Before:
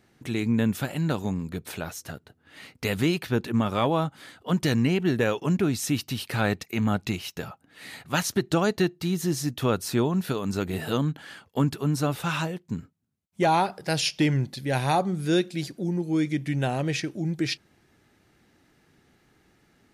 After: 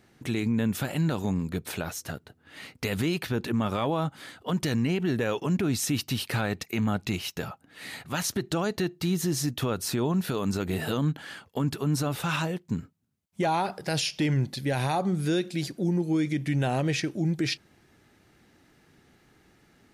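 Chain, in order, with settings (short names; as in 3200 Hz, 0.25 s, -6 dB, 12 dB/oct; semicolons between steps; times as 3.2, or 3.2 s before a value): limiter -20.5 dBFS, peak gain reduction 8 dB; gain +2 dB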